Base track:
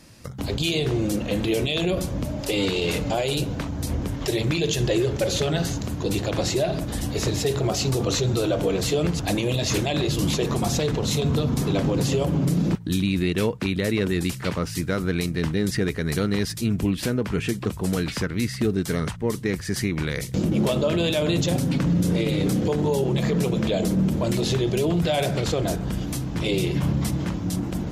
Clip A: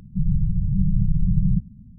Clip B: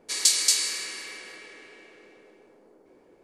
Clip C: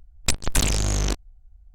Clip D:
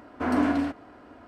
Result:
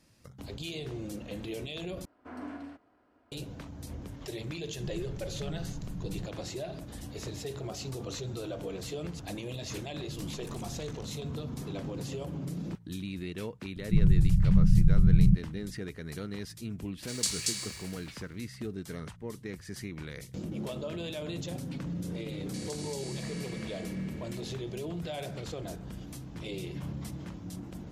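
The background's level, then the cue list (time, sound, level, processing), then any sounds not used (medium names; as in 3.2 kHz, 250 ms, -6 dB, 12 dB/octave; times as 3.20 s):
base track -15 dB
2.05 s: replace with D -18 dB
4.67 s: add A -15 dB + tilt EQ +1.5 dB/octave
9.92 s: add C -16.5 dB + compression, threshold -30 dBFS
13.76 s: add A -1 dB
16.98 s: add B -9.5 dB + crossover distortion -41.5 dBFS
22.45 s: add B -5.5 dB + compression 4:1, threshold -39 dBFS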